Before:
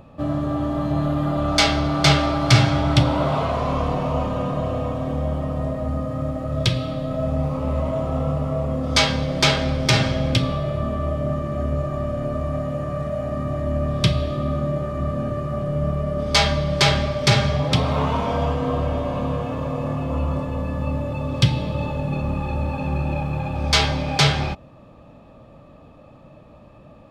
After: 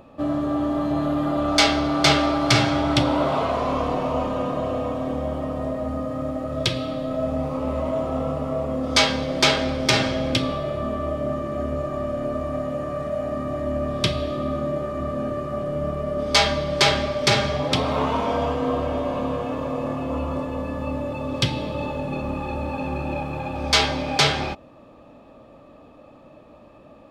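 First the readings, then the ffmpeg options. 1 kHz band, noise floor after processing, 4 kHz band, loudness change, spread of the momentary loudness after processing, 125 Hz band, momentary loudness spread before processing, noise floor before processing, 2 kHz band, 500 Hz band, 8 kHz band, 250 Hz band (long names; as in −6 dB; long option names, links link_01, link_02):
+0.5 dB, −48 dBFS, 0.0 dB, −1.5 dB, 9 LU, −8.0 dB, 8 LU, −46 dBFS, 0.0 dB, +0.5 dB, 0.0 dB, −0.5 dB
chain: -af "lowshelf=frequency=210:width_type=q:width=1.5:gain=-6.5"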